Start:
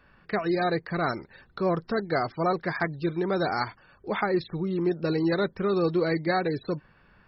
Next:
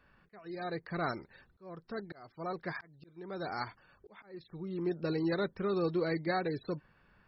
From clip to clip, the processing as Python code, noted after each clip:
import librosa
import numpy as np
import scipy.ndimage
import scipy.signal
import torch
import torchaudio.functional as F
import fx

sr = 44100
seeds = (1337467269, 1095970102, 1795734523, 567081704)

y = fx.auto_swell(x, sr, attack_ms=728.0)
y = y * 10.0 ** (-7.0 / 20.0)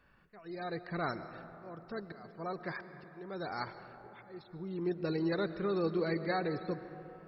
y = fx.rev_freeverb(x, sr, rt60_s=3.6, hf_ratio=0.35, predelay_ms=80, drr_db=11.0)
y = y * 10.0 ** (-1.0 / 20.0)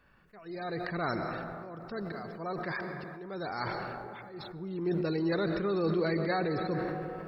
y = fx.sustainer(x, sr, db_per_s=22.0)
y = y * 10.0 ** (2.0 / 20.0)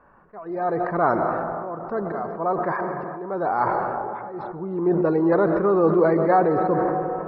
y = fx.curve_eq(x, sr, hz=(110.0, 1000.0, 3600.0), db=(0, 14, -19))
y = y * 10.0 ** (3.5 / 20.0)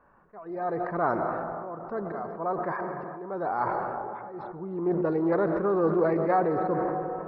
y = fx.doppler_dist(x, sr, depth_ms=0.13)
y = y * 10.0 ** (-6.0 / 20.0)